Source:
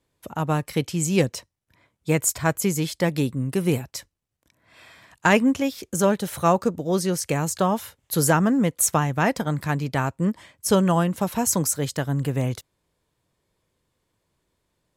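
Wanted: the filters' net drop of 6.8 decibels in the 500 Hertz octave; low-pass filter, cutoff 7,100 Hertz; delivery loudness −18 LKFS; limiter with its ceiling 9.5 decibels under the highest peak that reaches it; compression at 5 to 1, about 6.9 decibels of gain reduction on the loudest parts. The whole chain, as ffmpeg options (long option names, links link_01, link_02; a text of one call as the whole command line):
ffmpeg -i in.wav -af "lowpass=7100,equalizer=frequency=500:width_type=o:gain=-9,acompressor=threshold=-24dB:ratio=5,volume=13dB,alimiter=limit=-7.5dB:level=0:latency=1" out.wav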